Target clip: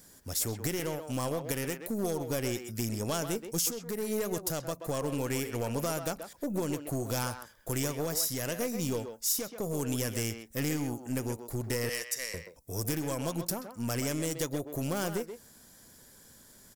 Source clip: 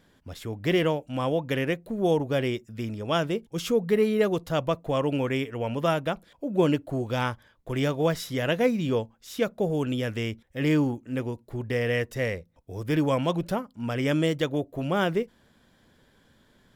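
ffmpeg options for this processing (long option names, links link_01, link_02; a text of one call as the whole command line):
ffmpeg -i in.wav -filter_complex "[0:a]asettb=1/sr,asplit=3[link_01][link_02][link_03];[link_01]atrim=end=11.894[link_04];[link_02]atrim=start=11.89:end=12.34,asetpts=PTS-STARTPTS,afade=type=in:duration=0.004:curve=qsin,afade=type=out:start_time=0.446:duration=0.004:curve=qsin,bandpass=frequency=4900:width_type=q:width=0.51:csg=0[link_05];[link_03]atrim=start=12.336[link_06];[link_04][link_05]acrossfade=duration=0.004:curve1=hsin:curve2=qsin[link_07];[link_07][link_06]acrossfade=duration=0.004:curve1=qsin:curve2=hsin,acompressor=threshold=-29dB:ratio=12,aeval=exprs='0.1*(cos(1*acos(clip(val(0)/0.1,-1,1)))-cos(1*PI/2))+0.01*(cos(4*acos(clip(val(0)/0.1,-1,1)))-cos(4*PI/2))':channel_layout=same,volume=25dB,asoftclip=hard,volume=-25dB,aexciter=amount=10.1:drive=3:freq=4900,alimiter=limit=-18dB:level=0:latency=1:release=474,asplit=2[link_08][link_09];[link_09]adelay=130,highpass=300,lowpass=3400,asoftclip=type=hard:threshold=-27.5dB,volume=-7dB[link_10];[link_08][link_10]amix=inputs=2:normalize=0" out.wav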